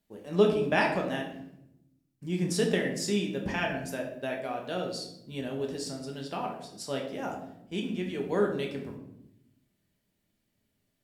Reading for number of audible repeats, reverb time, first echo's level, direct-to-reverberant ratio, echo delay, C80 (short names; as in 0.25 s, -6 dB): none, 0.80 s, none, 0.0 dB, none, 9.5 dB